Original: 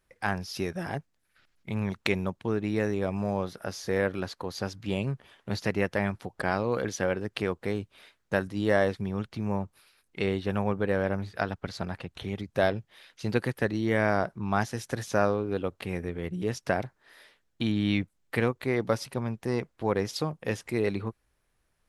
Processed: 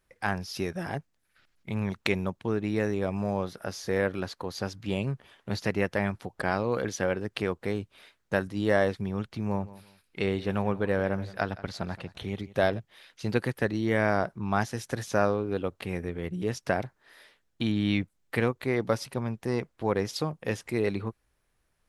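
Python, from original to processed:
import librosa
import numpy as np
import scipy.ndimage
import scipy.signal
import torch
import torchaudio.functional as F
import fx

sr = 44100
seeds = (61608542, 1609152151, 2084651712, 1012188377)

y = fx.echo_feedback(x, sr, ms=172, feedback_pct=26, wet_db=-18.5, at=(9.5, 12.78), fade=0.02)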